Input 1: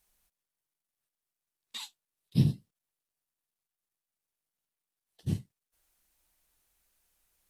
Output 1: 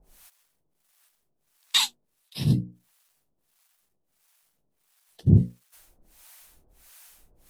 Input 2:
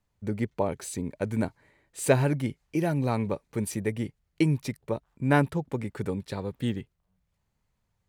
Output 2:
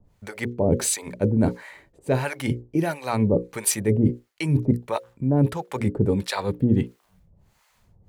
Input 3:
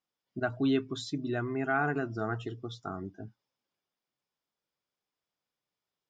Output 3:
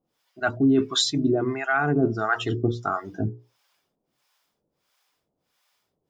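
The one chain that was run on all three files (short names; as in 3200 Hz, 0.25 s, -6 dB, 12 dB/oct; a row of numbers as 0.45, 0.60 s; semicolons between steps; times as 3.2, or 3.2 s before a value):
notches 60/120/180/240/300/360/420/480/540 Hz; reverse; compressor 8:1, threshold -36 dBFS; reverse; harmonic tremolo 1.5 Hz, depth 100%, crossover 640 Hz; match loudness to -24 LUFS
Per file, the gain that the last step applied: +23.5, +21.5, +21.0 dB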